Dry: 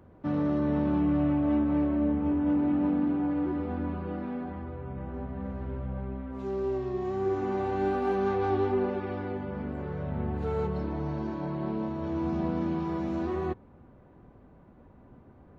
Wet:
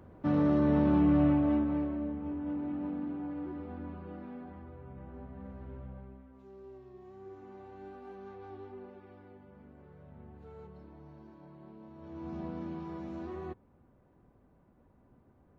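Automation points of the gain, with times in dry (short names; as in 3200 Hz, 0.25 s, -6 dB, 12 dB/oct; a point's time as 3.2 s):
1.27 s +1 dB
2.11 s -10 dB
5.84 s -10 dB
6.47 s -20 dB
11.8 s -20 dB
12.35 s -10 dB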